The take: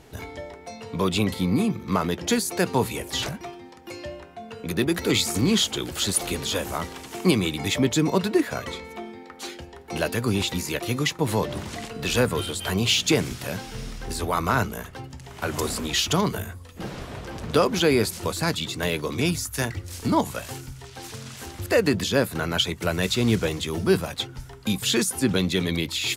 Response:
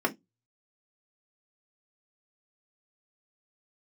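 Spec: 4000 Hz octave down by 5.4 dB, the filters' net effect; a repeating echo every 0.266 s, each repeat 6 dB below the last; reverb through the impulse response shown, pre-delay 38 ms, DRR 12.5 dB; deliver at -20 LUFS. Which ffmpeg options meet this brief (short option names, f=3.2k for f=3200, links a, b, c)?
-filter_complex "[0:a]equalizer=f=4k:t=o:g=-7,aecho=1:1:266|532|798|1064|1330|1596:0.501|0.251|0.125|0.0626|0.0313|0.0157,asplit=2[a][b];[1:a]atrim=start_sample=2205,adelay=38[c];[b][c]afir=irnorm=-1:irlink=0,volume=-23dB[d];[a][d]amix=inputs=2:normalize=0,volume=4.5dB"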